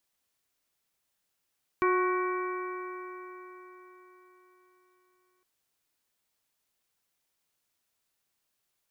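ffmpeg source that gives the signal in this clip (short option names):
-f lavfi -i "aevalsrc='0.0631*pow(10,-3*t/4.3)*sin(2*PI*363.6*t)+0.00891*pow(10,-3*t/4.3)*sin(2*PI*730.78*t)+0.0531*pow(10,-3*t/4.3)*sin(2*PI*1105.05*t)+0.02*pow(10,-3*t/4.3)*sin(2*PI*1489.84*t)+0.0133*pow(10,-3*t/4.3)*sin(2*PI*1888.39*t)+0.0178*pow(10,-3*t/4.3)*sin(2*PI*2303.74*t)':d=3.61:s=44100"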